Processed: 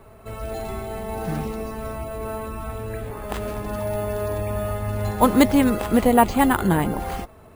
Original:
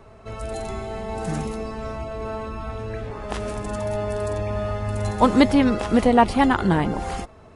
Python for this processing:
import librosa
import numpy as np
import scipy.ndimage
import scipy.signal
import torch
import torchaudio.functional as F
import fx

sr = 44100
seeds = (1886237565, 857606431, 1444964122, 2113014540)

y = np.repeat(scipy.signal.resample_poly(x, 1, 4), 4)[:len(x)]